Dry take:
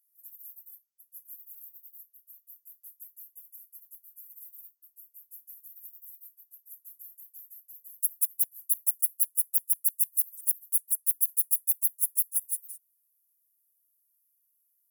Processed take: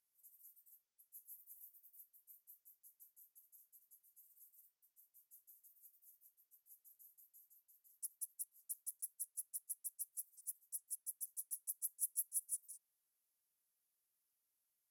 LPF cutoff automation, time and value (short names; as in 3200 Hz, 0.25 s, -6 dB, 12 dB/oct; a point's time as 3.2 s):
0.72 s 6900 Hz
1.25 s 8800 Hz
2.45 s 8800 Hz
2.89 s 6400 Hz
7.29 s 6400 Hz
7.74 s 5000 Hz
11.49 s 5000 Hz
12.01 s 6900 Hz